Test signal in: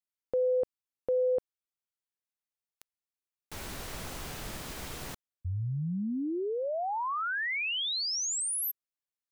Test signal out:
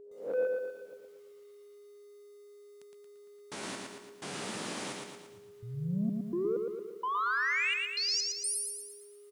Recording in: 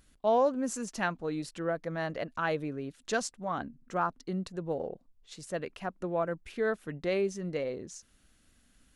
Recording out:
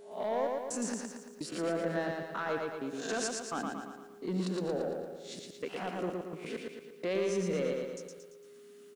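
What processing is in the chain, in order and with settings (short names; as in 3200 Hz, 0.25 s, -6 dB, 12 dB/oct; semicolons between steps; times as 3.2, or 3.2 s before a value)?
spectral swells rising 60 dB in 0.38 s; HPF 180 Hz 24 dB/oct; low shelf 330 Hz +4.5 dB; limiter -23 dBFS; soft clip -26.5 dBFS; step gate "xx.x..xxx.x." 64 bpm -60 dB; whine 410 Hz -49 dBFS; delay with a stepping band-pass 0.128 s, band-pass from 2800 Hz, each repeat -1.4 oct, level -11 dB; downsampling 22050 Hz; lo-fi delay 0.114 s, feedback 55%, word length 11-bit, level -3 dB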